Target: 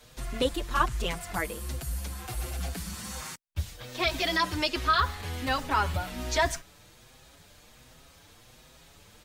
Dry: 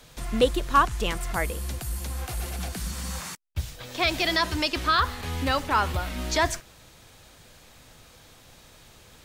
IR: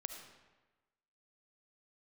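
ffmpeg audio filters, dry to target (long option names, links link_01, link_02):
-filter_complex "[0:a]asplit=2[link_01][link_02];[link_02]adelay=6.2,afreqshift=1.3[link_03];[link_01][link_03]amix=inputs=2:normalize=1"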